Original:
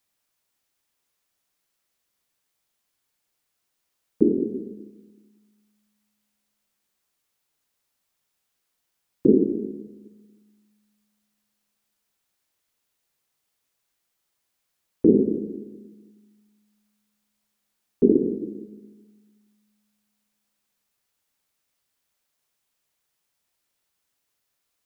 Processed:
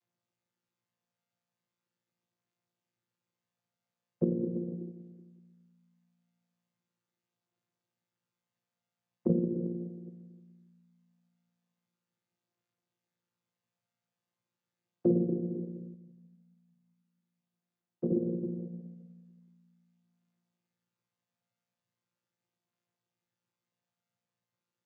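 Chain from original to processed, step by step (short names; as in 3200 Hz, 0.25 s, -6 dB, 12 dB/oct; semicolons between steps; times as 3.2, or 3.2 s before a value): chord vocoder bare fifth, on A#2; compressor 2:1, threshold -31 dBFS, peak gain reduction 11 dB; 15.94–18.12 flange 1.5 Hz, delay 8.6 ms, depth 9.8 ms, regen +81%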